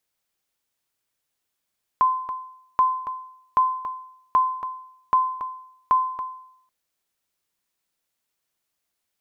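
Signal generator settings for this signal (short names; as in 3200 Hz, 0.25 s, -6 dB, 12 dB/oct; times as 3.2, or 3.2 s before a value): sonar ping 1030 Hz, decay 0.71 s, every 0.78 s, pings 6, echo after 0.28 s, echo -10.5 dB -11.5 dBFS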